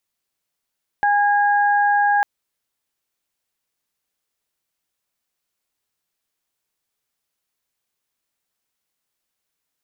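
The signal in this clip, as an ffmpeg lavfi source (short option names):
-f lavfi -i "aevalsrc='0.178*sin(2*PI*819*t)+0.106*sin(2*PI*1638*t)':d=1.2:s=44100"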